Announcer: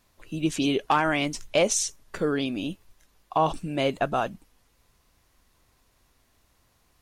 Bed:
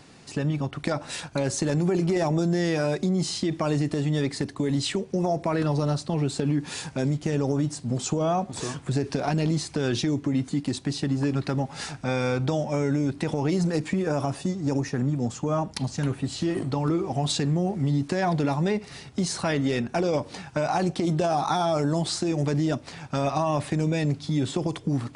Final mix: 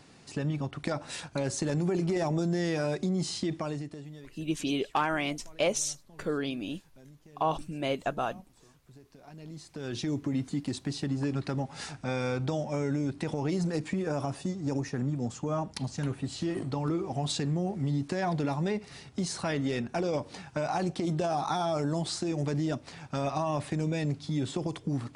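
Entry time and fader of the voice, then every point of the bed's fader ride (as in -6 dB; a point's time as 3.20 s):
4.05 s, -5.5 dB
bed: 3.52 s -5 dB
4.43 s -28.5 dB
9.12 s -28.5 dB
10.12 s -5.5 dB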